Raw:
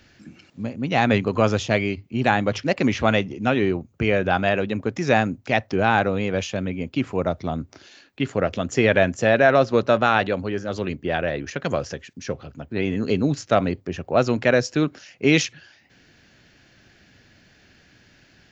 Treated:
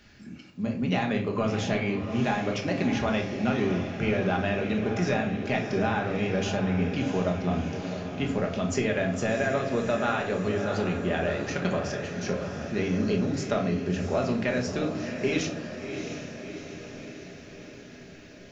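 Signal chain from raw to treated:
downward compressor, threshold −23 dBFS, peak gain reduction 12 dB
feedback delay with all-pass diffusion 681 ms, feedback 62%, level −8 dB
on a send at −1 dB: convolution reverb RT60 0.50 s, pre-delay 5 ms
on the sum: level −3 dB

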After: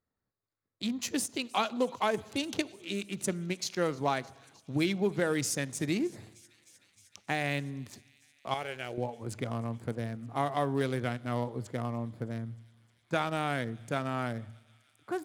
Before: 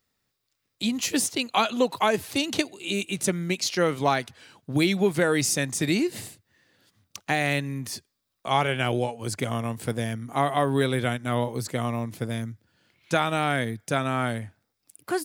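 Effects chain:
adaptive Wiener filter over 15 samples
0:08.54–0:08.98: octave-band graphic EQ 125/250/1,000/4,000 Hz −11/−9/−11/−6 dB
delay with a high-pass on its return 308 ms, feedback 82%, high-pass 3,100 Hz, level −22 dB
on a send at −19 dB: convolution reverb RT60 1.2 s, pre-delay 3 ms
on the sum: every ending faded ahead of time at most 470 dB per second
level −6.5 dB

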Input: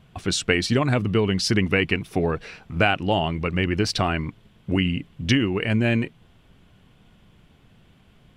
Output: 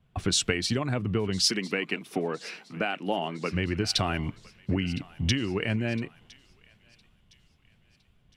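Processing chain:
downward compressor 16 to 1, threshold −28 dBFS, peak gain reduction 15 dB
0:01.46–0:03.52: high-pass filter 180 Hz 24 dB per octave
feedback echo with a high-pass in the loop 1,011 ms, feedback 64%, high-pass 1,200 Hz, level −13.5 dB
multiband upward and downward expander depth 70%
level +4 dB

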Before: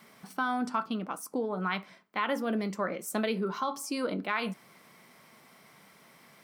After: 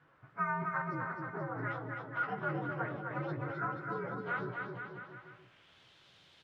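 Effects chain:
partials spread apart or drawn together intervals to 121%
phase-vocoder pitch shift with formants kept −6.5 semitones
bit-depth reduction 10 bits, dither triangular
low-pass filter sweep 1,400 Hz → 3,700 Hz, 0:04.87–0:05.85
bouncing-ball delay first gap 260 ms, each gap 0.85×, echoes 5
level −6.5 dB

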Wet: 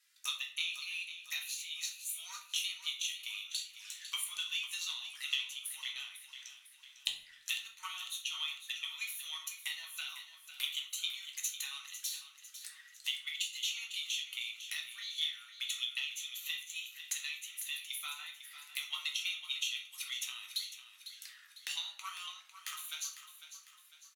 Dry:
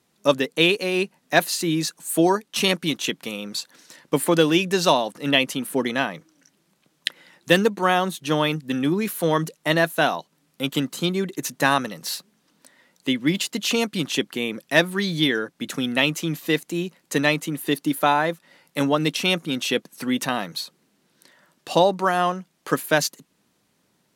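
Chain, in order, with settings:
one-sided soft clipper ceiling −8 dBFS
Butterworth high-pass 1,500 Hz 36 dB per octave
downward compressor 3 to 1, threshold −43 dBFS, peak gain reduction 19 dB
transient designer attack +7 dB, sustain +2 dB
flanger swept by the level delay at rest 3.3 ms, full sweep at −43 dBFS
repeating echo 501 ms, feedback 47%, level −11.5 dB
rectangular room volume 57 cubic metres, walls mixed, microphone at 0.63 metres

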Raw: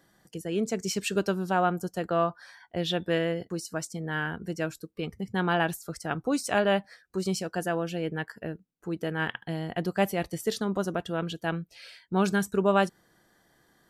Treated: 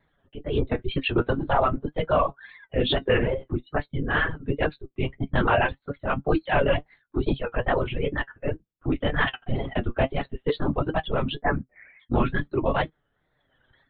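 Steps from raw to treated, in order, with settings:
0:11.35–0:12.01: Butterworth low-pass 2,200 Hz 72 dB per octave
linear-prediction vocoder at 8 kHz whisper
in parallel at 0 dB: brickwall limiter −18.5 dBFS, peak gain reduction 9.5 dB
on the sum: reverb reduction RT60 1.4 s
automatic gain control gain up to 15.5 dB
flanger 0.46 Hz, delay 6.5 ms, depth 1.6 ms, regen +53%
tape wow and flutter 120 cents
level −5 dB

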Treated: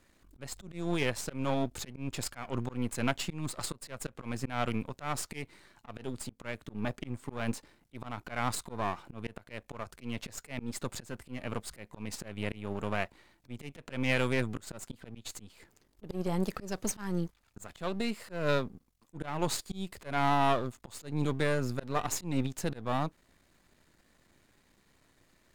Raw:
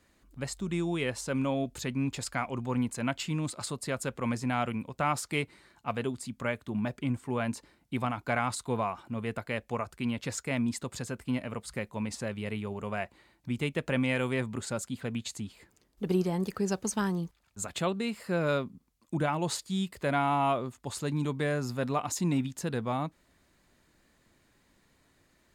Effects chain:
gain on one half-wave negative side −12 dB
volume swells 210 ms
level +3.5 dB

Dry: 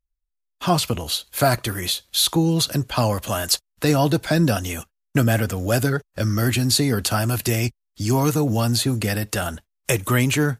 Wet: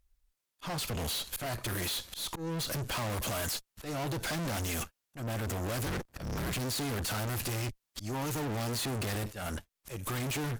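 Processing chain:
0:05.86–0:06.59: sub-harmonics by changed cycles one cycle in 3, inverted
sine wavefolder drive 8 dB, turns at −5.5 dBFS
downward compressor 6 to 1, threshold −15 dBFS, peak gain reduction 7.5 dB
volume swells 626 ms
tube saturation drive 36 dB, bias 0.75
level +3 dB

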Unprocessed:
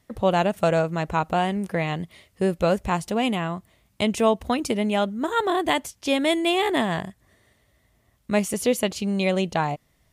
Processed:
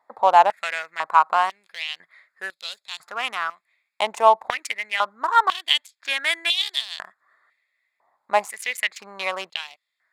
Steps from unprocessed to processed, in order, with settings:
adaptive Wiener filter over 15 samples
high-pass on a step sequencer 2 Hz 870–3,700 Hz
level +2 dB

